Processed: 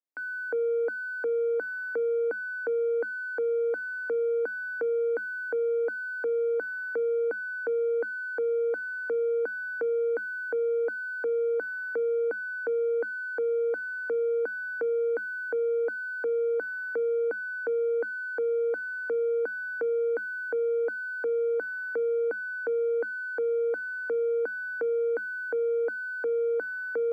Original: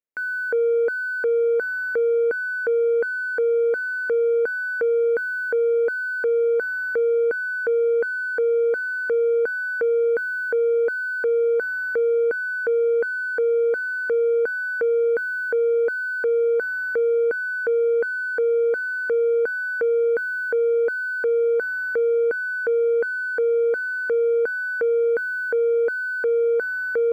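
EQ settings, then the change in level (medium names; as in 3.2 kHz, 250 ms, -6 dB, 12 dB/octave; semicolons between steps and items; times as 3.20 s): rippled Chebyshev high-pass 210 Hz, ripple 9 dB; tilt EQ -2.5 dB/octave; treble shelf 4 kHz +8 dB; -1.5 dB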